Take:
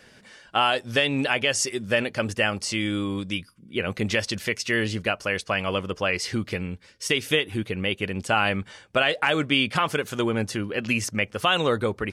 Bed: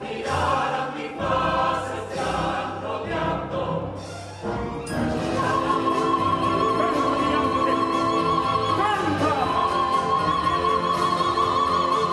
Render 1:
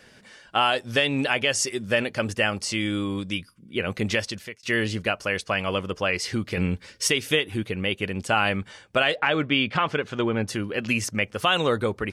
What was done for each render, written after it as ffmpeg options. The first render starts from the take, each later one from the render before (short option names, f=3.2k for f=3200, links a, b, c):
-filter_complex "[0:a]asettb=1/sr,asplit=3[a][b][c];[a]atrim=end=6.574[d];[b]atrim=start=6.57:end=7.1,asetpts=PTS-STARTPTS,afade=t=in:d=0.004:c=qsin,afade=t=out:st=0.526:d=0.004:c=qsin,acontrast=86[e];[c]atrim=start=7.096[f];[d][e]acrossfade=d=0.004:c1=hsin:c2=qsin[g];[g][f]acrossfade=d=0.004:c1=qsin:c2=hsin,asettb=1/sr,asplit=3[h][i][j];[h]atrim=end=9.154[k];[i]atrim=start=9.15:end=10.48,asetpts=PTS-STARTPTS,afade=t=in:d=0.004:c=qsin,afade=t=out:st=1.326:d=0.004:c=qsin,lowpass=3.7k[l];[j]atrim=start=10.476[m];[k][l]acrossfade=d=0.004:c1=hsin:c2=qsin[n];[n][m]acrossfade=d=0.004:c1=qsin:c2=hsin,asplit=2[o][p];[o]atrim=end=4.63,asetpts=PTS-STARTPTS,afade=t=out:st=4.14:d=0.49[q];[p]atrim=start=4.63,asetpts=PTS-STARTPTS,afade=t=in:d=0.004:c=hsin[r];[q][r]concat=n=2:v=0:a=1"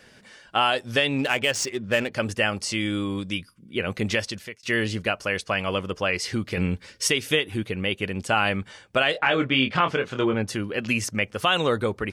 -filter_complex "[0:a]asettb=1/sr,asplit=3[a][b][c];[a]atrim=end=1.184[d];[b]atrim=start=1.18:end=2.12,asetpts=PTS-STARTPTS,afade=t=in:d=0.004:c=qsin,afade=t=out:st=0.936:d=0.004:c=qsin,adynamicsmooth=sensitivity=5:basefreq=2.7k[e];[c]atrim=start=2.116[f];[d][e]acrossfade=d=0.004:c1=hsin:c2=qsin[g];[g][f]acrossfade=d=0.004:c1=qsin:c2=hsin,asettb=1/sr,asplit=3[h][i][j];[h]atrim=end=9.124[k];[i]atrim=start=9.12:end=10.34,asetpts=PTS-STARTPTS,afade=t=in:d=0.004:c=qsin,afade=t=out:st=1.216:d=0.004:c=qsin,asplit=2[l][m];[m]adelay=23,volume=-5.5dB[n];[l][n]amix=inputs=2:normalize=0,atrim=end_sample=53802[o];[j]atrim=start=10.336[p];[k][o]acrossfade=d=0.004:c1=hsin:c2=qsin[q];[q][p]acrossfade=d=0.004:c1=qsin:c2=hsin"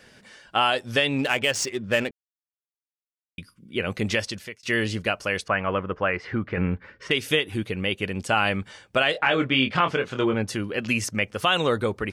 -filter_complex "[0:a]asettb=1/sr,asplit=3[a][b][c];[a]atrim=end=5.484[d];[b]atrim=start=5.48:end=7.11,asetpts=PTS-STARTPTS,afade=t=in:d=0.004:c=qsin,afade=t=out:st=1.626:d=0.004:c=qsin,lowpass=f=1.6k:t=q:w=1.6[e];[c]atrim=start=7.106[f];[d][e]acrossfade=d=0.004:c1=hsin:c2=qsin[g];[g][f]acrossfade=d=0.004:c1=qsin:c2=hsin,asplit=3[h][i][j];[h]atrim=end=2.11,asetpts=PTS-STARTPTS,afade=t=out:st=2.106:d=0.004:c=hsin[k];[i]atrim=start=2.11:end=3.38,asetpts=PTS-STARTPTS,volume=0[l];[j]atrim=start=3.38,asetpts=PTS-STARTPTS,afade=t=in:d=0.004:c=hsin[m];[k][l][m]concat=n=3:v=0:a=1"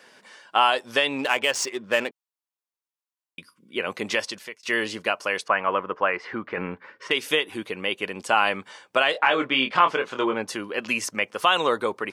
-af "highpass=310,equalizer=f=1k:t=o:w=0.49:g=7.5"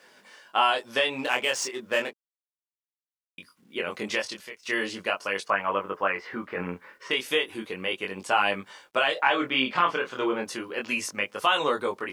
-af "acrusher=bits=10:mix=0:aa=0.000001,flanger=delay=20:depth=3.7:speed=0.35"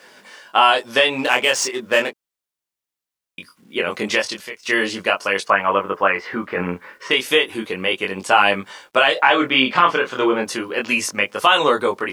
-af "volume=9dB,alimiter=limit=-1dB:level=0:latency=1"